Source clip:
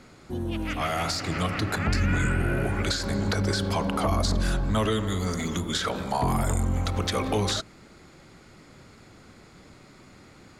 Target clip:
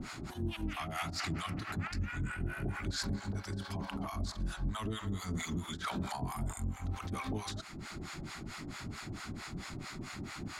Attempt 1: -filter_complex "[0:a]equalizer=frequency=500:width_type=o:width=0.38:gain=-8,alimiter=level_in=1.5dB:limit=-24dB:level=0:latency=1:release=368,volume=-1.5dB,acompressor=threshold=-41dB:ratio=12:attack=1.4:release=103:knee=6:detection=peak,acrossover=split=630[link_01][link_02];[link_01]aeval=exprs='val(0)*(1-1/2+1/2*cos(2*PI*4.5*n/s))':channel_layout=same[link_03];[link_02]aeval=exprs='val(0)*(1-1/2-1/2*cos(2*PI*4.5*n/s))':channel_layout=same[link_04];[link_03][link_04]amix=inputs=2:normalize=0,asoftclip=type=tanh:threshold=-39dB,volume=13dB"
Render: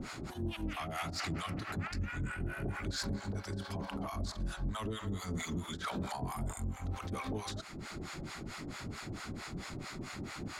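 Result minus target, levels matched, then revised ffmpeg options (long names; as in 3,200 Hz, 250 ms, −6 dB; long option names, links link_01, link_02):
soft clipping: distortion +18 dB; 500 Hz band +3.0 dB
-filter_complex "[0:a]equalizer=frequency=500:width_type=o:width=0.38:gain=-18,alimiter=level_in=1.5dB:limit=-24dB:level=0:latency=1:release=368,volume=-1.5dB,acompressor=threshold=-41dB:ratio=12:attack=1.4:release=103:knee=6:detection=peak,acrossover=split=630[link_01][link_02];[link_01]aeval=exprs='val(0)*(1-1/2+1/2*cos(2*PI*4.5*n/s))':channel_layout=same[link_03];[link_02]aeval=exprs='val(0)*(1-1/2-1/2*cos(2*PI*4.5*n/s))':channel_layout=same[link_04];[link_03][link_04]amix=inputs=2:normalize=0,asoftclip=type=tanh:threshold=-29dB,volume=13dB"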